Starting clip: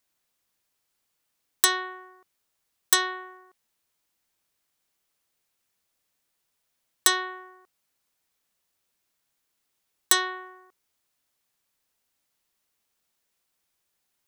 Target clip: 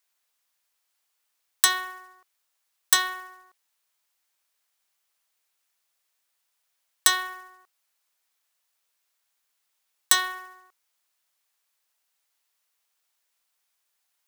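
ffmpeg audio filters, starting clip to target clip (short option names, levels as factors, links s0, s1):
-af "highpass=700,acrusher=bits=3:mode=log:mix=0:aa=0.000001,volume=1.12"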